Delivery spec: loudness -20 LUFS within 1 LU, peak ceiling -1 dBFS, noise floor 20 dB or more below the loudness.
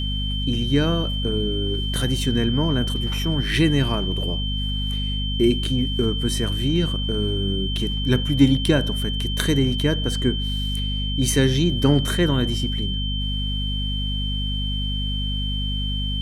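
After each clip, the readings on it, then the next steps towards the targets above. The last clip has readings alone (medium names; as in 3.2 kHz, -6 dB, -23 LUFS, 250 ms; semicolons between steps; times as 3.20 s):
hum 50 Hz; highest harmonic 250 Hz; hum level -23 dBFS; steady tone 3.1 kHz; tone level -28 dBFS; loudness -22.5 LUFS; peak level -4.0 dBFS; loudness target -20.0 LUFS
-> hum notches 50/100/150/200/250 Hz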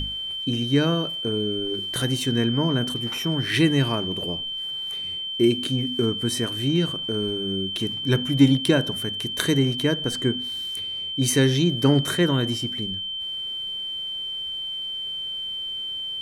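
hum not found; steady tone 3.1 kHz; tone level -28 dBFS
-> band-stop 3.1 kHz, Q 30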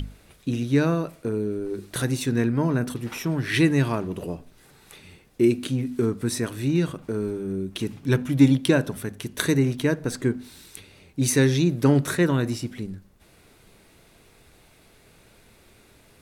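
steady tone not found; loudness -24.0 LUFS; peak level -5.5 dBFS; loudness target -20.0 LUFS
-> trim +4 dB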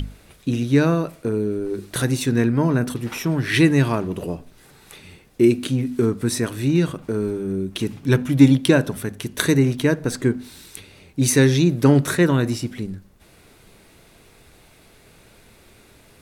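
loudness -20.0 LUFS; peak level -1.5 dBFS; noise floor -52 dBFS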